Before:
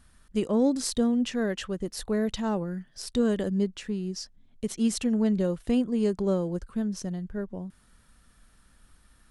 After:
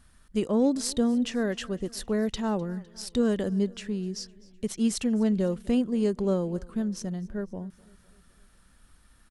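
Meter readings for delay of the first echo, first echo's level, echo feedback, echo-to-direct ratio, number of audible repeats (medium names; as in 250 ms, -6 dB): 254 ms, -23.5 dB, 58%, -22.0 dB, 3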